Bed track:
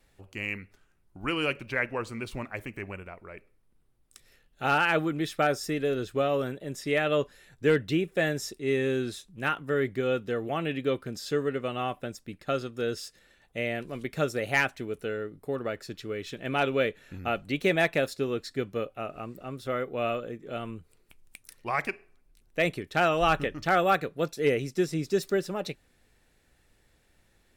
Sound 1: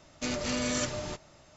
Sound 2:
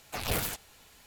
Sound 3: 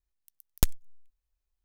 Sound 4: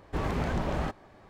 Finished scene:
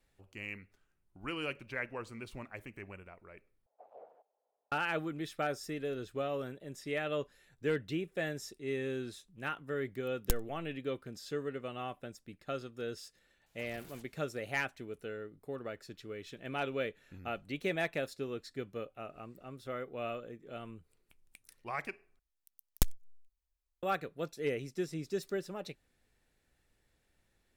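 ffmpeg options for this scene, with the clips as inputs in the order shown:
ffmpeg -i bed.wav -i cue0.wav -i cue1.wav -i cue2.wav -filter_complex "[2:a]asplit=2[link_01][link_02];[3:a]asplit=2[link_03][link_04];[0:a]volume=-9.5dB[link_05];[link_01]asuperpass=centerf=610:order=4:qfactor=2[link_06];[link_02]acompressor=threshold=-32dB:ratio=6:attack=3.2:release=140:knee=1:detection=peak[link_07];[link_05]asplit=3[link_08][link_09][link_10];[link_08]atrim=end=3.664[link_11];[link_06]atrim=end=1.06,asetpts=PTS-STARTPTS,volume=-14dB[link_12];[link_09]atrim=start=4.716:end=22.194[link_13];[link_04]atrim=end=1.64,asetpts=PTS-STARTPTS,volume=-5dB[link_14];[link_10]atrim=start=23.826[link_15];[link_03]atrim=end=1.64,asetpts=PTS-STARTPTS,volume=-7.5dB,afade=type=in:duration=0.004:curve=hsin,afade=type=out:start_time=1.636:duration=0.004:curve=hsin,adelay=9670[link_16];[link_07]atrim=end=1.06,asetpts=PTS-STARTPTS,volume=-18dB,afade=type=in:duration=0.004:curve=hsin,afade=type=out:start_time=1.056:duration=0.004:curve=hsin,adelay=13460[link_17];[link_11][link_12]acrossfade=duration=0.004:curve1=hsin:curve2=hsin[link_18];[link_18][link_13]acrossfade=duration=0.004:curve1=hsin:curve2=hsin[link_19];[link_19][link_14]acrossfade=duration=0.004:curve1=hsin:curve2=hsin[link_20];[link_20][link_15]acrossfade=duration=0.004:curve1=hsin:curve2=hsin[link_21];[link_21][link_16][link_17]amix=inputs=3:normalize=0" out.wav

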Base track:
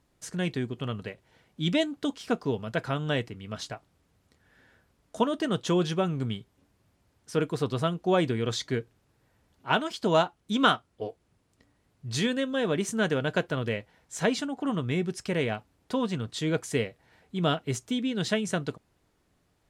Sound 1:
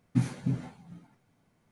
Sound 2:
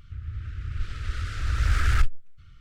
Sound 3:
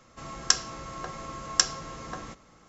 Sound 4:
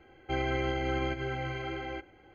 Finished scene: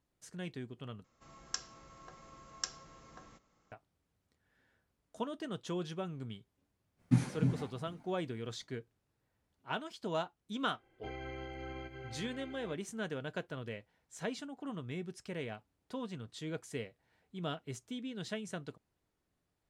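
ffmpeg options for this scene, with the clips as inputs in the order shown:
ffmpeg -i bed.wav -i cue0.wav -i cue1.wav -i cue2.wav -i cue3.wav -filter_complex "[0:a]volume=-13dB,asplit=2[link_01][link_02];[link_01]atrim=end=1.044[link_03];[3:a]atrim=end=2.68,asetpts=PTS-STARTPTS,volume=-16.5dB[link_04];[link_02]atrim=start=3.716[link_05];[1:a]atrim=end=1.71,asetpts=PTS-STARTPTS,volume=-1.5dB,afade=type=in:duration=0.05,afade=type=out:start_time=1.66:duration=0.05,adelay=6960[link_06];[4:a]atrim=end=2.34,asetpts=PTS-STARTPTS,volume=-13.5dB,afade=type=in:duration=0.004:curve=hsin,afade=type=out:start_time=2.336:duration=0.004:curve=hsin,adelay=473634S[link_07];[link_03][link_04]acrossfade=duration=0.004:curve1=hsin:curve2=hsin[link_08];[link_08][link_05]acrossfade=duration=0.004:curve1=hsin:curve2=hsin[link_09];[link_09][link_06][link_07]amix=inputs=3:normalize=0" out.wav

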